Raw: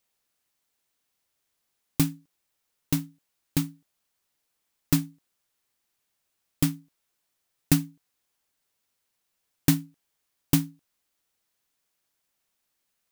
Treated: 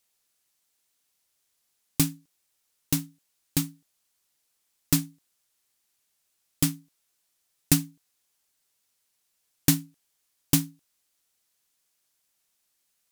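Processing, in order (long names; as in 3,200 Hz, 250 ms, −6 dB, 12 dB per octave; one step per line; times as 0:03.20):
parametric band 8,800 Hz +7.5 dB 2.6 octaves
level −1.5 dB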